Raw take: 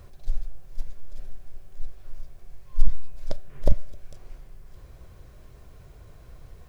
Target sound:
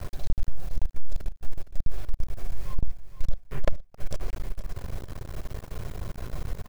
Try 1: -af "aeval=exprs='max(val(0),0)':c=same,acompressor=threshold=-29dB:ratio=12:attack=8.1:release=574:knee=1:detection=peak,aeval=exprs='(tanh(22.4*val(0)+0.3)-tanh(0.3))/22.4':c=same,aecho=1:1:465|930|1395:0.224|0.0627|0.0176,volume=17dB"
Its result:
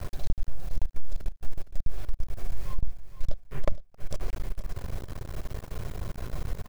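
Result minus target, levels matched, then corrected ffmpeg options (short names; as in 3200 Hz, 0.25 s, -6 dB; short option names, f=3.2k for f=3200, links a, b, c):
compressor: peak gain reduction +7 dB
-af "aeval=exprs='max(val(0),0)':c=same,acompressor=threshold=-21.5dB:ratio=12:attack=8.1:release=574:knee=1:detection=peak,aeval=exprs='(tanh(22.4*val(0)+0.3)-tanh(0.3))/22.4':c=same,aecho=1:1:465|930|1395:0.224|0.0627|0.0176,volume=17dB"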